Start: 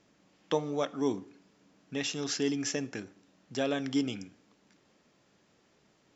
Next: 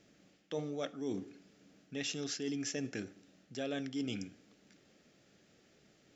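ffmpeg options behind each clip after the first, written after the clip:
-af "equalizer=f=990:t=o:w=0.41:g=-14,areverse,acompressor=threshold=0.0141:ratio=5,areverse,volume=1.19"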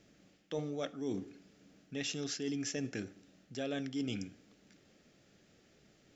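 -af "lowshelf=f=78:g=8.5"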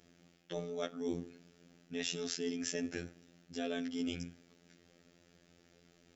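-af "afftfilt=real='hypot(re,im)*cos(PI*b)':imag='0':win_size=2048:overlap=0.75,volume=1.5"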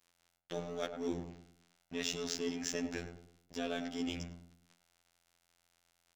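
-filter_complex "[0:a]aeval=exprs='sgn(val(0))*max(abs(val(0))-0.00266,0)':c=same,asplit=2[s0][s1];[s1]adelay=103,lowpass=f=840:p=1,volume=0.501,asplit=2[s2][s3];[s3]adelay=103,lowpass=f=840:p=1,volume=0.42,asplit=2[s4][s5];[s5]adelay=103,lowpass=f=840:p=1,volume=0.42,asplit=2[s6][s7];[s7]adelay=103,lowpass=f=840:p=1,volume=0.42,asplit=2[s8][s9];[s9]adelay=103,lowpass=f=840:p=1,volume=0.42[s10];[s0][s2][s4][s6][s8][s10]amix=inputs=6:normalize=0,volume=1.19"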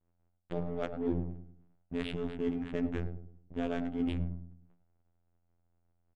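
-af "aresample=8000,aresample=44100,adynamicsmooth=sensitivity=7.5:basefreq=700,aemphasis=mode=reproduction:type=bsi,volume=1.19"

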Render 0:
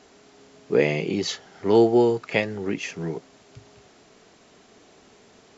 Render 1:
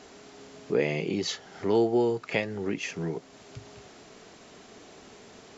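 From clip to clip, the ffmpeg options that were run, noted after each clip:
-af "acompressor=threshold=0.00794:ratio=1.5,volume=1.5"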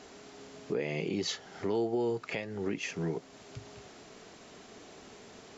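-af "alimiter=limit=0.0891:level=0:latency=1:release=266,volume=0.841"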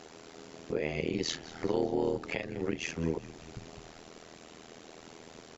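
-filter_complex "[0:a]tremolo=f=81:d=0.974,asplit=7[s0][s1][s2][s3][s4][s5][s6];[s1]adelay=197,afreqshift=-47,volume=0.133[s7];[s2]adelay=394,afreqshift=-94,volume=0.0822[s8];[s3]adelay=591,afreqshift=-141,volume=0.0513[s9];[s4]adelay=788,afreqshift=-188,volume=0.0316[s10];[s5]adelay=985,afreqshift=-235,volume=0.0197[s11];[s6]adelay=1182,afreqshift=-282,volume=0.0122[s12];[s0][s7][s8][s9][s10][s11][s12]amix=inputs=7:normalize=0,volume=1.68"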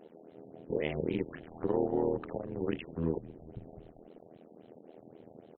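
-af "afwtdn=0.00631,equalizer=f=3000:t=o:w=0.21:g=5,afftfilt=real='re*lt(b*sr/1024,930*pow(4300/930,0.5+0.5*sin(2*PI*3.7*pts/sr)))':imag='im*lt(b*sr/1024,930*pow(4300/930,0.5+0.5*sin(2*PI*3.7*pts/sr)))':win_size=1024:overlap=0.75"

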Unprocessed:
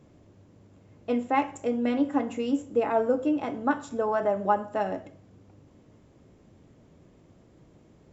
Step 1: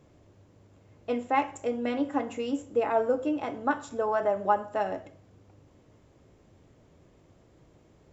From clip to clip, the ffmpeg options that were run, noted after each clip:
-af "equalizer=f=210:w=1.1:g=-6"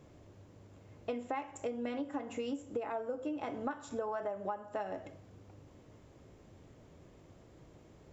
-af "acompressor=threshold=0.0178:ratio=12,volume=1.12"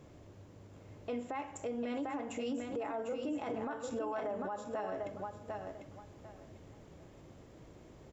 -filter_complex "[0:a]asplit=2[s0][s1];[s1]aecho=0:1:747|1494|2241:0.473|0.104|0.0229[s2];[s0][s2]amix=inputs=2:normalize=0,alimiter=level_in=2.51:limit=0.0631:level=0:latency=1:release=16,volume=0.398,volume=1.26"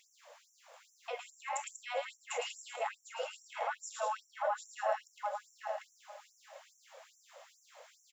-af "aecho=1:1:110|190:0.562|0.398,afftfilt=real='re*gte(b*sr/1024,470*pow(5600/470,0.5+0.5*sin(2*PI*2.4*pts/sr)))':imag='im*gte(b*sr/1024,470*pow(5600/470,0.5+0.5*sin(2*PI*2.4*pts/sr)))':win_size=1024:overlap=0.75,volume=2.24"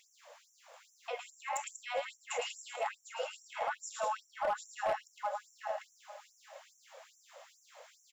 -af "asoftclip=type=hard:threshold=0.0422,volume=1.12"

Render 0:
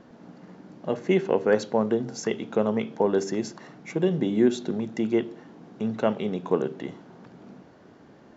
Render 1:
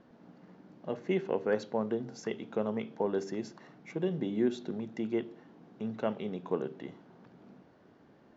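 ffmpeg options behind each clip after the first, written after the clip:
-af "lowpass=5400,volume=0.376"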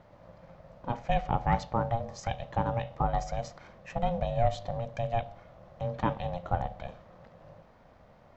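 -af "aeval=exprs='val(0)*sin(2*PI*350*n/s)':c=same,volume=2"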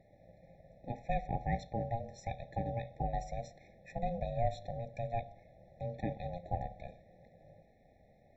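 -af "afftfilt=real='re*eq(mod(floor(b*sr/1024/860),2),0)':imag='im*eq(mod(floor(b*sr/1024/860),2),0)':win_size=1024:overlap=0.75,volume=0.473"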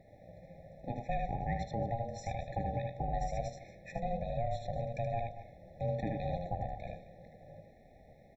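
-af "acontrast=67,aecho=1:1:77|227:0.631|0.112,alimiter=limit=0.0841:level=0:latency=1:release=287,volume=0.75"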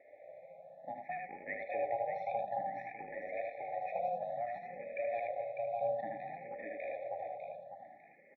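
-filter_complex "[0:a]highpass=490,equalizer=f=600:t=q:w=4:g=5,equalizer=f=1300:t=q:w=4:g=6,equalizer=f=2200:t=q:w=4:g=8,lowpass=f=2600:w=0.5412,lowpass=f=2600:w=1.3066,aecho=1:1:600|1200|1800|2400|3000:0.631|0.233|0.0864|0.032|0.0118,asplit=2[s0][s1];[s1]afreqshift=0.58[s2];[s0][s2]amix=inputs=2:normalize=1,volume=1.19"

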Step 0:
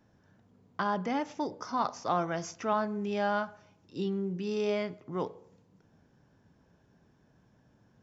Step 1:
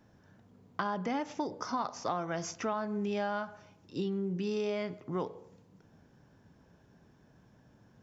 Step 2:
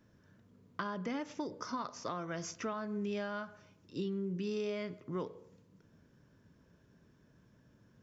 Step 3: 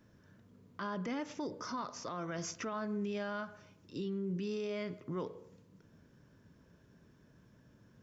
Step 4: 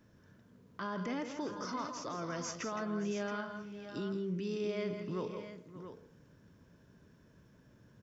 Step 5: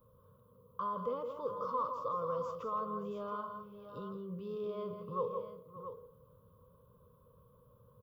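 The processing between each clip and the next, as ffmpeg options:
-af "acompressor=threshold=0.0224:ratio=6,volume=1.41"
-af "equalizer=f=780:t=o:w=0.32:g=-12.5,volume=0.708"
-af "alimiter=level_in=2.82:limit=0.0631:level=0:latency=1:release=11,volume=0.355,volume=1.26"
-af "aecho=1:1:164|166|195|578|675:0.15|0.355|0.119|0.15|0.316"
-af "firequalizer=gain_entry='entry(110,0);entry(330,-18);entry(500,12);entry(720,-17);entry(1100,12);entry(1700,-28);entry(3300,-9);entry(6100,-29);entry(11000,10)':delay=0.05:min_phase=1"

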